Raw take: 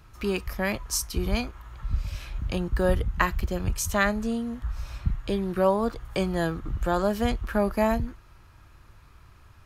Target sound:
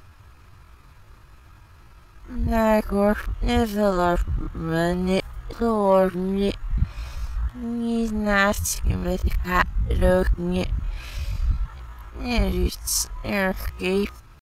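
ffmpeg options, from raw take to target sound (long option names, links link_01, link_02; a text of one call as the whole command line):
ffmpeg -i in.wav -af "areverse,acontrast=59,atempo=0.67,volume=-2dB" out.wav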